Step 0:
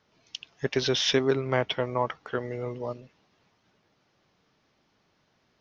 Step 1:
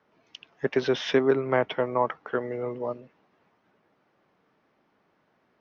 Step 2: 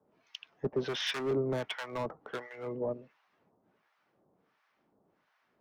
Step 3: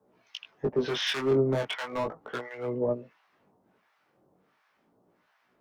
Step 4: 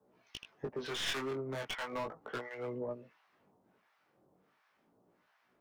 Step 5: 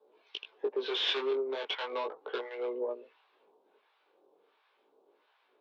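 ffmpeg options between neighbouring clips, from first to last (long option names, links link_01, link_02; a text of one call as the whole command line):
ffmpeg -i in.wav -filter_complex "[0:a]acrossover=split=170 2300:gain=0.251 1 0.158[link_01][link_02][link_03];[link_01][link_02][link_03]amix=inputs=3:normalize=0,volume=3dB" out.wav
ffmpeg -i in.wav -filter_complex "[0:a]acrossover=split=190[link_01][link_02];[link_02]asoftclip=type=hard:threshold=-26dB[link_03];[link_01][link_03]amix=inputs=2:normalize=0,acrossover=split=870[link_04][link_05];[link_04]aeval=exprs='val(0)*(1-1/2+1/2*cos(2*PI*1.4*n/s))':channel_layout=same[link_06];[link_05]aeval=exprs='val(0)*(1-1/2-1/2*cos(2*PI*1.4*n/s))':channel_layout=same[link_07];[link_06][link_07]amix=inputs=2:normalize=0" out.wav
ffmpeg -i in.wav -af "flanger=delay=16:depth=6.4:speed=0.37,volume=7.5dB" out.wav
ffmpeg -i in.wav -filter_complex "[0:a]acrossover=split=1100[link_01][link_02];[link_01]acompressor=threshold=-34dB:ratio=6[link_03];[link_02]aeval=exprs='clip(val(0),-1,0.0126)':channel_layout=same[link_04];[link_03][link_04]amix=inputs=2:normalize=0,volume=-3.5dB" out.wav
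ffmpeg -i in.wav -af "highpass=frequency=390:width=0.5412,highpass=frequency=390:width=1.3066,equalizer=frequency=420:width_type=q:width=4:gain=6,equalizer=frequency=670:width_type=q:width=4:gain=-6,equalizer=frequency=1300:width_type=q:width=4:gain=-6,equalizer=frequency=1900:width_type=q:width=4:gain=-9,equalizer=frequency=3700:width_type=q:width=4:gain=5,lowpass=frequency=4000:width=0.5412,lowpass=frequency=4000:width=1.3066,volume=6dB" -ar 48000 -c:a libopus -b:a 64k out.opus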